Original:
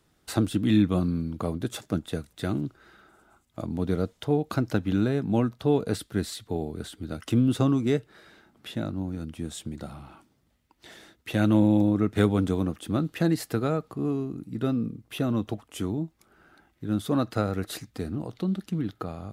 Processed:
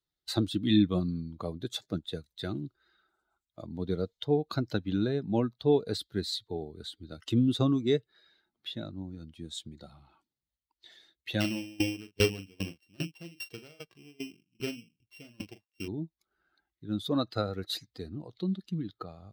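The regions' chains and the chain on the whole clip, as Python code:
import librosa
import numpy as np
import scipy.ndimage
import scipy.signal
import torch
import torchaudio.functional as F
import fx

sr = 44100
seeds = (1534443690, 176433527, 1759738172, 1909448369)

y = fx.chain(x, sr, fx.sample_sort(block=16),
    fx.doubler(ms=41.0, db=-6.0),
    fx.tremolo_decay(direction='decaying', hz=2.5, depth_db=23), at=(11.4, 15.88))
y = fx.bin_expand(y, sr, power=1.5)
y = fx.graphic_eq_15(y, sr, hz=(400, 4000, 10000), db=(4, 12, -5))
y = y * librosa.db_to_amplitude(-2.5)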